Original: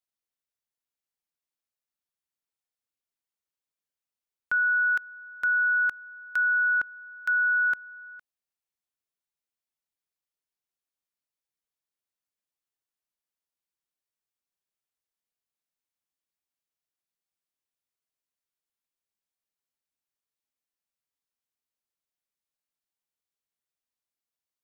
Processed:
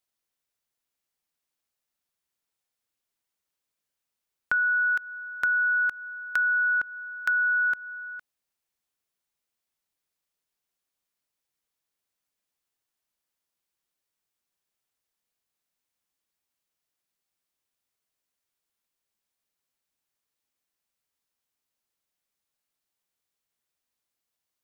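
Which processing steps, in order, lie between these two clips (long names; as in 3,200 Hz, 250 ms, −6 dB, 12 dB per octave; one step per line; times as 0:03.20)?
downward compressor 4 to 1, threshold −30 dBFS, peak gain reduction 7 dB
level +6.5 dB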